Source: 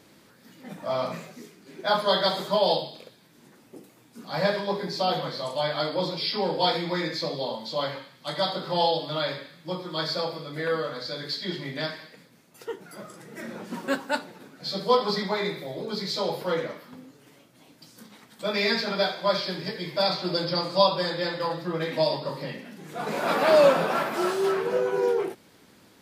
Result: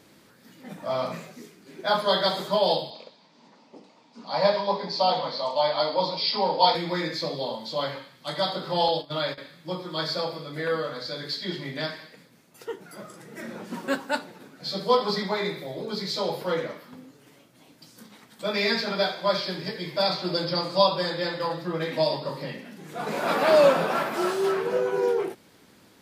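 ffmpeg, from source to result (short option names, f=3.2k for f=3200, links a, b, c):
-filter_complex "[0:a]asettb=1/sr,asplit=3[a][b][c];[a]atrim=end=2.904[d];[b]atrim=start=2.9:end=6.75,asetpts=PTS-STARTPTS,afade=t=in:d=0.004:c=qsin,afade=t=out:st=3.846:d=0.004:c=qsin,highpass=f=180:w=0.5412,highpass=f=180:w=1.3066,equalizer=f=350:t=q:w=4:g=-8,equalizer=f=610:t=q:w=4:g=4,equalizer=f=930:t=q:w=4:g=9,equalizer=f=1.6k:t=q:w=4:g=-6,equalizer=f=4.6k:t=q:w=4:g=5,lowpass=f=5.8k:w=0.5412,lowpass=f=5.8k:w=1.3066[e];[c]atrim=start=6.746[f];[d][e]acrossfade=d=0.004:c1=hsin:c2=qsin[g];[g][f]acrossfade=d=0.004:c1=qsin:c2=hsin,asettb=1/sr,asplit=3[h][i][j];[h]atrim=end=8.884[k];[i]atrim=start=8.88:end=9.38,asetpts=PTS-STARTPTS,afade=t=in:d=0.004:c=qsin,afade=t=out:st=0.496:d=0.004:c=qsin,agate=range=-15dB:threshold=-33dB:ratio=16:release=100:detection=peak[l];[j]atrim=start=9.376[m];[k][l]acrossfade=d=0.004:c1=hsin:c2=qsin[n];[n][m]acrossfade=d=0.004:c1=qsin:c2=hsin"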